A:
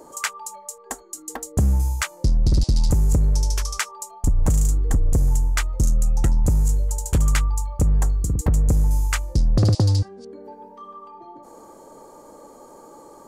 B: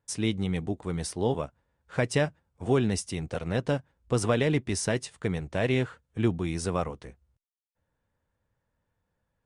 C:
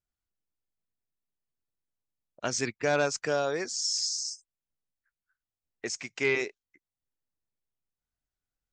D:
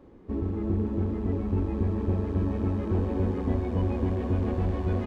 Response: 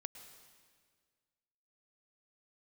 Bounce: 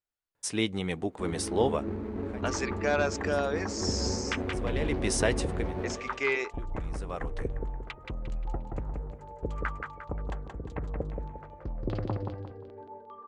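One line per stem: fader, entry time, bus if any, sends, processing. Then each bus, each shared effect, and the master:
-9.0 dB, 2.30 s, no send, echo send -4.5 dB, local Wiener filter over 9 samples; LFO low-pass saw down 2.5 Hz 340–3800 Hz
+3.0 dB, 0.35 s, no send, no echo send, treble shelf 4.8 kHz +5 dB; auto duck -24 dB, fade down 0.30 s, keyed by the third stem
-0.5 dB, 0.00 s, no send, no echo send, none
-1.0 dB, 0.90 s, no send, echo send -12 dB, median filter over 41 samples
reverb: none
echo: feedback delay 176 ms, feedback 37%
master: tone controls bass -10 dB, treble -6 dB

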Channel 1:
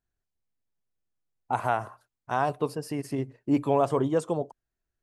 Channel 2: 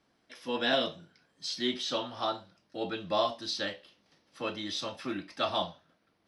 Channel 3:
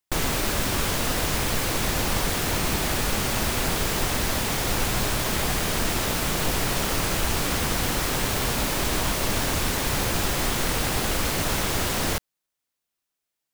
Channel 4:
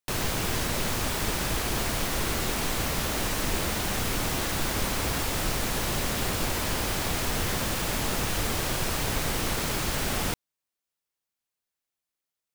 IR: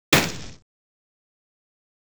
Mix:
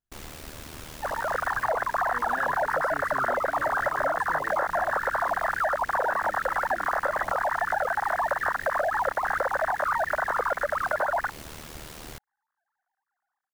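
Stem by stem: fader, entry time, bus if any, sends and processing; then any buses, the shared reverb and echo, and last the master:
-9.0 dB, 0.00 s, no send, compressor with a negative ratio -29 dBFS
-5.5 dB, 1.65 s, no send, low-pass 1.4 kHz
-14.0 dB, 0.00 s, no send, ring modulator 38 Hz
-1.5 dB, 0.95 s, no send, formants replaced by sine waves; steep low-pass 1.8 kHz 72 dB/octave; level rider gain up to 9 dB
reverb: none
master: compression, threshold -23 dBFS, peak gain reduction 8 dB

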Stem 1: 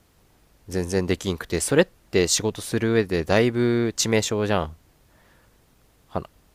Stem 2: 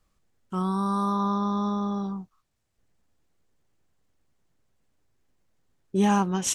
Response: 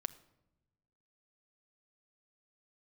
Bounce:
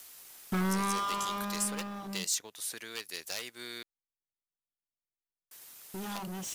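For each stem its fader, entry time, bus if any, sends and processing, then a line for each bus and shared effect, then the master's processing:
-5.5 dB, 0.00 s, muted 3.83–5.51 s, no send, one-sided wavefolder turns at -12 dBFS; differentiator; three bands compressed up and down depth 70%
-6.5 dB, 0.00 s, no send, hum notches 50/100/150/200/250/300/350/400 Hz; compression 2:1, threshold -29 dBFS, peak gain reduction 6.5 dB; waveshaping leveller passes 5; auto duck -16 dB, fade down 1.90 s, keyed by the first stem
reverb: none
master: waveshaping leveller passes 1

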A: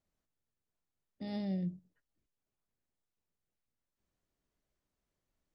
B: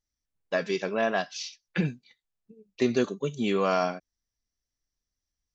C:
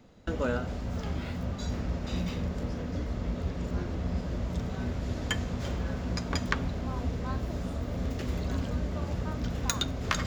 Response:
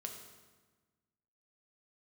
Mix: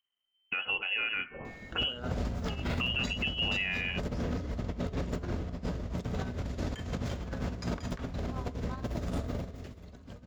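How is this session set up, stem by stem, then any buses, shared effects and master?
-13.5 dB, 0.00 s, bus A, no send, compression, threshold -38 dBFS, peak gain reduction 6.5 dB; ring modulator 1.1 kHz
-0.5 dB, 0.00 s, bus A, no send, none
9.42 s -4.5 dB -> 9.64 s -16 dB, 1.45 s, no bus, send -8 dB, compressor with a negative ratio -36 dBFS, ratio -0.5
bus A: 0.0 dB, frequency inversion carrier 3.1 kHz; compression, threshold -30 dBFS, peak gain reduction 10.5 dB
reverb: on, RT60 1.3 s, pre-delay 4 ms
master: level rider gain up to 5 dB; peak limiter -22 dBFS, peak gain reduction 10 dB

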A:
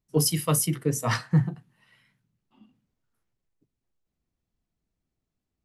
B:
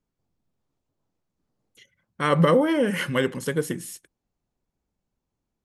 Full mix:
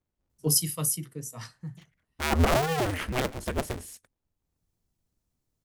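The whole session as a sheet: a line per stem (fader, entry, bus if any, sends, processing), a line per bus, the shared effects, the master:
-3.5 dB, 0.30 s, no send, tone controls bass +4 dB, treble +11 dB; auto duck -20 dB, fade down 1.60 s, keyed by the second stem
-6.5 dB, 0.00 s, no send, cycle switcher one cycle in 2, inverted; bass shelf 120 Hz +8 dB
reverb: none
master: none

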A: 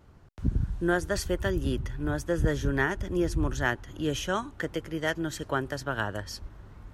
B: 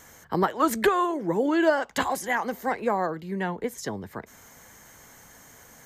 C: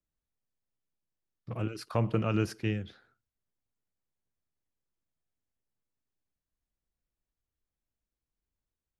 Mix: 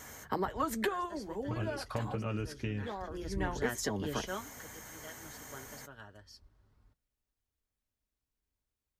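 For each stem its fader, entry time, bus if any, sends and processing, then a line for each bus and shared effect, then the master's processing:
2.92 s -21.5 dB -> 3.14 s -9.5 dB -> 4.34 s -9.5 dB -> 4.69 s -20 dB, 0.00 s, no bus, no send, peaking EQ 4.8 kHz +7.5 dB 0.72 oct
+3.0 dB, 0.00 s, muted 2.15–2.78 s, bus A, no send, auto duck -18 dB, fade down 0.60 s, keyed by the third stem
+2.0 dB, 0.00 s, bus A, no send, compression, threshold -31 dBFS, peak gain reduction 9 dB
bus A: 0.0 dB, compression 8:1, threshold -29 dBFS, peak gain reduction 15.5 dB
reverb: none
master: comb of notches 170 Hz

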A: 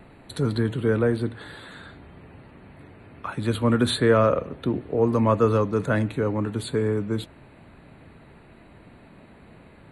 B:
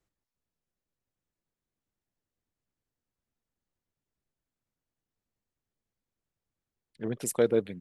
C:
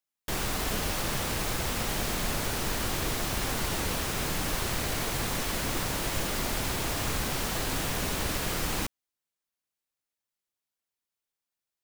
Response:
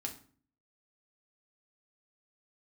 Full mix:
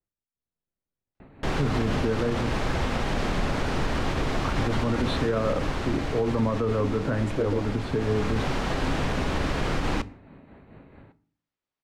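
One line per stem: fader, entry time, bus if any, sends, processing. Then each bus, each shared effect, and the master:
-9.0 dB, 1.20 s, send -4 dB, tremolo 4.6 Hz, depth 45%
-8.5 dB, 0.00 s, no send, none
-2.5 dB, 1.15 s, send -9.5 dB, hum notches 50/100 Hz; auto duck -12 dB, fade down 1.65 s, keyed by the second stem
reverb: on, RT60 0.45 s, pre-delay 4 ms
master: level rider gain up to 8 dB; tape spacing loss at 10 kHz 24 dB; peak limiter -16 dBFS, peak gain reduction 10.5 dB

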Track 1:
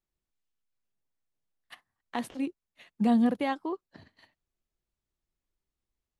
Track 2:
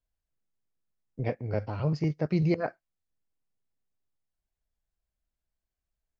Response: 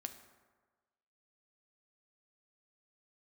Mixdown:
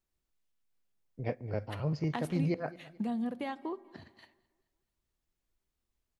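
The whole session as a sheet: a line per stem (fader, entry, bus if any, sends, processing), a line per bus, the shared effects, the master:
-1.5 dB, 0.00 s, send -3.5 dB, echo send -23 dB, compression 6:1, threshold -35 dBFS, peak gain reduction 14.5 dB
-3.5 dB, 0.00 s, send -13 dB, echo send -19 dB, random flutter of the level, depth 60%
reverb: on, RT60 1.4 s, pre-delay 4 ms
echo: feedback delay 216 ms, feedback 43%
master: none

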